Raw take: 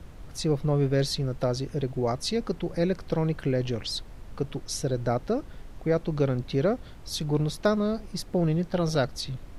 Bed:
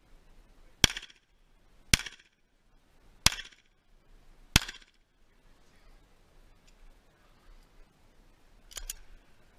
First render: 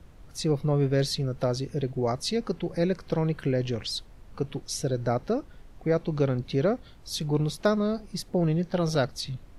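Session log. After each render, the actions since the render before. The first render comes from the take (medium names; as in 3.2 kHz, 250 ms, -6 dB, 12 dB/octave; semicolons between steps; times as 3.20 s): noise print and reduce 6 dB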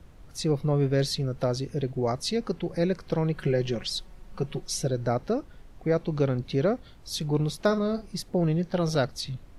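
3.36–4.87 s: comb 5.4 ms; 7.65–8.09 s: doubling 50 ms -12.5 dB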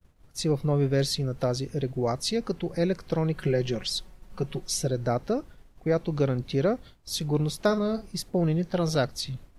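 expander -40 dBFS; treble shelf 7.7 kHz +5.5 dB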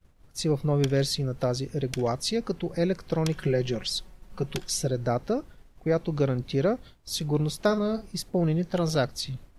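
add bed -14.5 dB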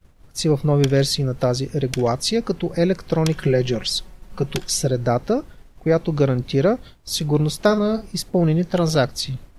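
trim +7 dB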